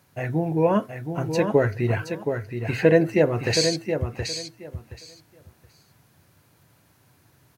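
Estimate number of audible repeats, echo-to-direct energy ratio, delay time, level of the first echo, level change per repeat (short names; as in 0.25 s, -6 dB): 2, -7.0 dB, 0.722 s, -7.0 dB, -15.0 dB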